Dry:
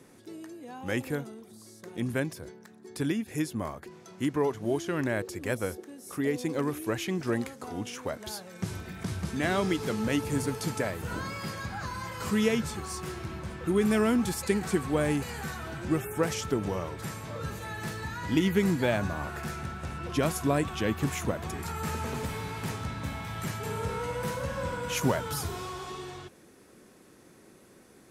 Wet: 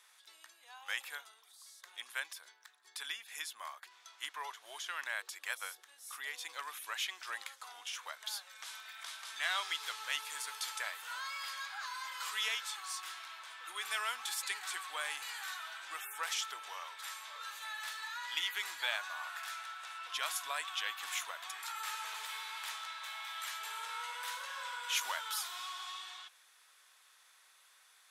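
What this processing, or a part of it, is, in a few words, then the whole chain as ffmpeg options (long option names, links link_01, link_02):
headphones lying on a table: -af "highpass=frequency=1000:width=0.5412,highpass=frequency=1000:width=1.3066,equalizer=frequency=3500:width_type=o:width=0.49:gain=8,volume=-3dB"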